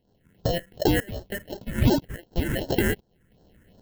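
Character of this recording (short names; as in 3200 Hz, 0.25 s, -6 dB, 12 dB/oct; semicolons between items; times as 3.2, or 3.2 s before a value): aliases and images of a low sample rate 1200 Hz, jitter 0%; tremolo saw up 1 Hz, depth 90%; phasing stages 4, 2.7 Hz, lowest notch 710–2200 Hz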